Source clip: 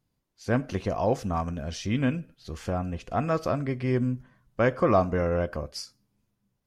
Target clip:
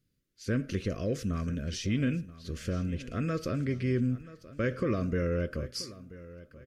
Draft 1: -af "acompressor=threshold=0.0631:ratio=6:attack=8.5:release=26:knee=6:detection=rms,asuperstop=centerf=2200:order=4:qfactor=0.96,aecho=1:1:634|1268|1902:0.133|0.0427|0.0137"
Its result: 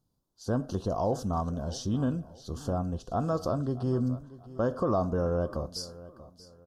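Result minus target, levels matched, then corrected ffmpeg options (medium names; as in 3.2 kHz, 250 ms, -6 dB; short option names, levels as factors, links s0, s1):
2 kHz band -10.0 dB; echo 347 ms early
-af "acompressor=threshold=0.0631:ratio=6:attack=8.5:release=26:knee=6:detection=rms,asuperstop=centerf=840:order=4:qfactor=0.96,aecho=1:1:981|1962|2943:0.133|0.0427|0.0137"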